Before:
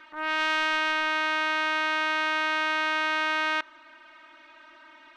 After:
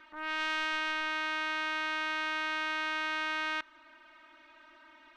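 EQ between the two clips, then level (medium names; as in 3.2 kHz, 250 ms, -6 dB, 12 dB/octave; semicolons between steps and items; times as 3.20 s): bass shelf 190 Hz +8 dB; dynamic bell 550 Hz, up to -5 dB, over -40 dBFS, Q 0.76; -6.0 dB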